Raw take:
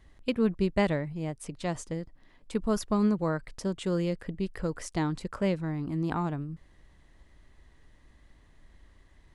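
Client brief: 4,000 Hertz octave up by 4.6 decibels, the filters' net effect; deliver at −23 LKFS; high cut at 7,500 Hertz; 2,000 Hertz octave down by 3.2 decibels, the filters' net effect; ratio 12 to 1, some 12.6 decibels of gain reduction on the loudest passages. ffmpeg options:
ffmpeg -i in.wav -af "lowpass=7500,equalizer=frequency=2000:width_type=o:gain=-6,equalizer=frequency=4000:width_type=o:gain=8.5,acompressor=threshold=-34dB:ratio=12,volume=17dB" out.wav

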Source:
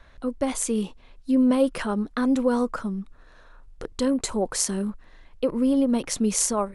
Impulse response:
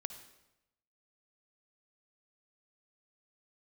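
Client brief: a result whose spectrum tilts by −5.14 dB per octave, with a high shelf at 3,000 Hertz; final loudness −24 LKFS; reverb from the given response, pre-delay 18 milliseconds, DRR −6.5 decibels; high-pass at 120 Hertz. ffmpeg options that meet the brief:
-filter_complex "[0:a]highpass=120,highshelf=frequency=3000:gain=-8.5,asplit=2[link_01][link_02];[1:a]atrim=start_sample=2205,adelay=18[link_03];[link_02][link_03]afir=irnorm=-1:irlink=0,volume=8.5dB[link_04];[link_01][link_04]amix=inputs=2:normalize=0,volume=-5.5dB"

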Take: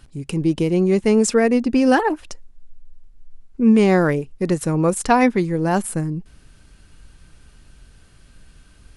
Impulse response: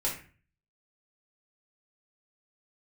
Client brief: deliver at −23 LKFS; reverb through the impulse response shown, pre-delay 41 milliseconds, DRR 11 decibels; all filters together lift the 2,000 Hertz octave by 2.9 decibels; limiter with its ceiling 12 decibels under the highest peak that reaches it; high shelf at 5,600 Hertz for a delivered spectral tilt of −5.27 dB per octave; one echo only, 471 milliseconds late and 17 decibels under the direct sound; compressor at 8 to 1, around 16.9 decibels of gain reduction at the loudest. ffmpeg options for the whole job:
-filter_complex "[0:a]equalizer=frequency=2000:width_type=o:gain=4,highshelf=frequency=5600:gain=-4,acompressor=threshold=-28dB:ratio=8,alimiter=level_in=3dB:limit=-24dB:level=0:latency=1,volume=-3dB,aecho=1:1:471:0.141,asplit=2[link_01][link_02];[1:a]atrim=start_sample=2205,adelay=41[link_03];[link_02][link_03]afir=irnorm=-1:irlink=0,volume=-17dB[link_04];[link_01][link_04]amix=inputs=2:normalize=0,volume=12.5dB"

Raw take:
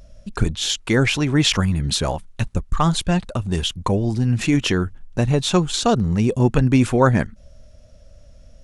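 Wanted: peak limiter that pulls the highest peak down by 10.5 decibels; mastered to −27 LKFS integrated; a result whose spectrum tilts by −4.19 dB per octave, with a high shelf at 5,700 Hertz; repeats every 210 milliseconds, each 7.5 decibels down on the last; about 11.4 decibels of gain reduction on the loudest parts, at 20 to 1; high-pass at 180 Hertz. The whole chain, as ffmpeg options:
ffmpeg -i in.wav -af "highpass=180,highshelf=frequency=5700:gain=5,acompressor=threshold=-23dB:ratio=20,alimiter=limit=-20.5dB:level=0:latency=1,aecho=1:1:210|420|630|840|1050:0.422|0.177|0.0744|0.0312|0.0131,volume=3.5dB" out.wav

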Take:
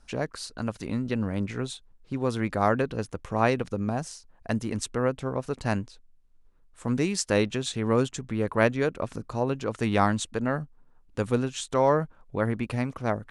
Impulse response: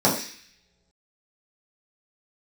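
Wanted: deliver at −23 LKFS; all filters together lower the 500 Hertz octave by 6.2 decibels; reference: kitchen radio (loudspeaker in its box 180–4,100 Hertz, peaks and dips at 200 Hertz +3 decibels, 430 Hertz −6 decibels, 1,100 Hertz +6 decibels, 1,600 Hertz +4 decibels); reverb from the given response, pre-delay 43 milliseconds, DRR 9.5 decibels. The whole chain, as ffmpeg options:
-filter_complex "[0:a]equalizer=frequency=500:width_type=o:gain=-5,asplit=2[link_01][link_02];[1:a]atrim=start_sample=2205,adelay=43[link_03];[link_02][link_03]afir=irnorm=-1:irlink=0,volume=-27.5dB[link_04];[link_01][link_04]amix=inputs=2:normalize=0,highpass=180,equalizer=frequency=200:width_type=q:width=4:gain=3,equalizer=frequency=430:width_type=q:width=4:gain=-6,equalizer=frequency=1100:width_type=q:width=4:gain=6,equalizer=frequency=1600:width_type=q:width=4:gain=4,lowpass=frequency=4100:width=0.5412,lowpass=frequency=4100:width=1.3066,volume=5.5dB"

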